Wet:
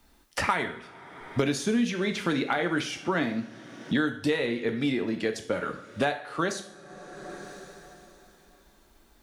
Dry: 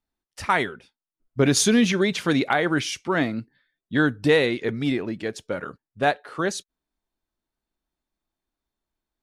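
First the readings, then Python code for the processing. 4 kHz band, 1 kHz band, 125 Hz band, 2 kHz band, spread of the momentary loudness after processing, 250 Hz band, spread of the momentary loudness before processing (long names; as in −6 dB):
−6.0 dB, −4.5 dB, −6.5 dB, −5.0 dB, 18 LU, −4.5 dB, 13 LU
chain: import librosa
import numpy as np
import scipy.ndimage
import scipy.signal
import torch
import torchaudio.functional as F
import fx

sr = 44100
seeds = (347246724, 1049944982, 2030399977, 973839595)

y = fx.rev_double_slope(x, sr, seeds[0], early_s=0.44, late_s=3.4, knee_db=-28, drr_db=5.0)
y = fx.band_squash(y, sr, depth_pct=100)
y = y * librosa.db_to_amplitude(-6.5)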